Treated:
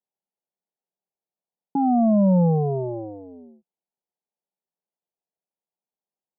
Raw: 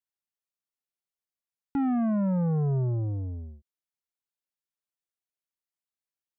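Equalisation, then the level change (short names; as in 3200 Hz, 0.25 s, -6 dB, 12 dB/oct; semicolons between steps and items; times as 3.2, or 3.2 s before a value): dynamic EQ 660 Hz, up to +5 dB, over -42 dBFS, Q 1.2; elliptic band-pass 170–860 Hz, stop band 40 dB; bell 290 Hz -7.5 dB 0.37 oct; +9.0 dB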